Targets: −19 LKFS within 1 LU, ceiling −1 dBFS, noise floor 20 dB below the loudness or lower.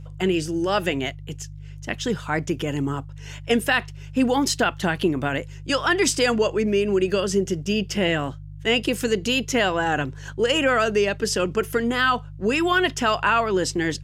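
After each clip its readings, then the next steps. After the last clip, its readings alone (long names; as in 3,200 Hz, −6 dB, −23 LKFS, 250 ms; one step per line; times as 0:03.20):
mains hum 50 Hz; hum harmonics up to 150 Hz; level of the hum −35 dBFS; integrated loudness −22.5 LKFS; sample peak −6.5 dBFS; target loudness −19.0 LKFS
→ hum removal 50 Hz, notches 3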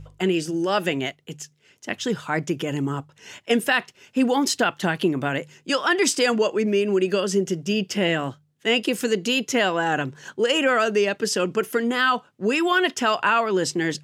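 mains hum none found; integrated loudness −22.5 LKFS; sample peak −7.0 dBFS; target loudness −19.0 LKFS
→ level +3.5 dB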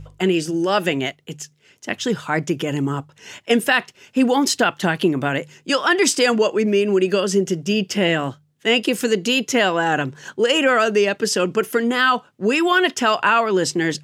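integrated loudness −19.0 LKFS; sample peak −3.5 dBFS; background noise floor −58 dBFS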